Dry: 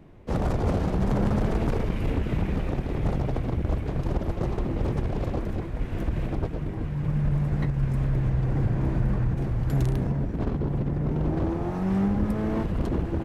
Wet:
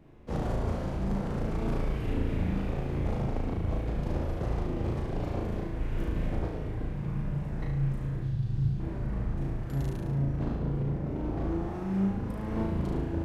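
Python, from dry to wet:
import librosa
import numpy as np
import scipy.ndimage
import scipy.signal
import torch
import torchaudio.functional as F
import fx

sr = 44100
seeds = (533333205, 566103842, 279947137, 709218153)

p1 = fx.graphic_eq_10(x, sr, hz=(125, 250, 500, 1000, 2000, 4000), db=(9, -4, -11, -6, -9, 10), at=(8.22, 8.8))
p2 = fx.rider(p1, sr, range_db=3, speed_s=0.5)
p3 = p2 + fx.room_flutter(p2, sr, wall_m=6.2, rt60_s=0.8, dry=0)
y = p3 * librosa.db_to_amplitude(-9.0)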